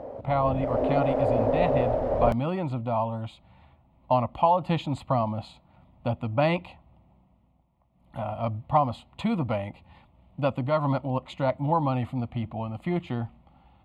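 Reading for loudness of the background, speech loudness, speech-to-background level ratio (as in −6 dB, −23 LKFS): −26.0 LKFS, −28.0 LKFS, −2.0 dB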